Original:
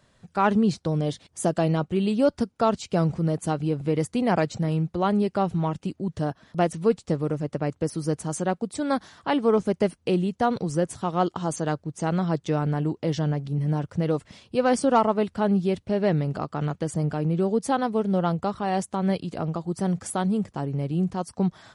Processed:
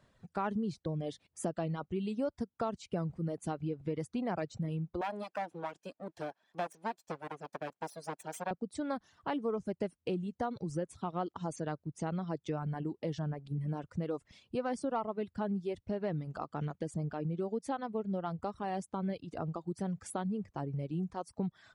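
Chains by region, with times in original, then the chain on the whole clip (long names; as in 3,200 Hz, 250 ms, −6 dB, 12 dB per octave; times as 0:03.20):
0:05.01–0:08.51: lower of the sound and its delayed copy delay 1.2 ms + high-pass filter 390 Hz
whole clip: reverb reduction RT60 1.3 s; high-shelf EQ 3,500 Hz −7.5 dB; downward compressor 2.5 to 1, threshold −30 dBFS; level −4.5 dB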